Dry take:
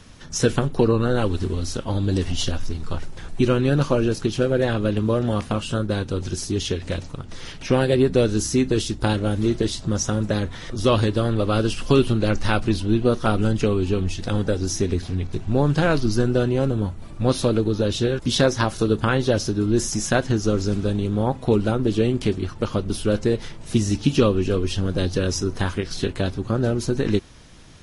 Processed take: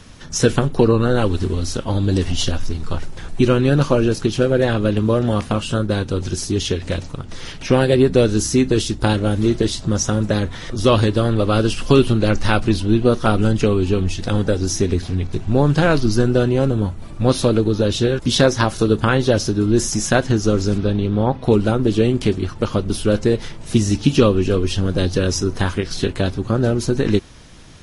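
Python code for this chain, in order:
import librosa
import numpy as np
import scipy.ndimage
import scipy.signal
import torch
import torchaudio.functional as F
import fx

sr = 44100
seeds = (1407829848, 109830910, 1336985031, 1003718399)

y = fx.savgol(x, sr, points=15, at=(20.78, 21.44))
y = F.gain(torch.from_numpy(y), 4.0).numpy()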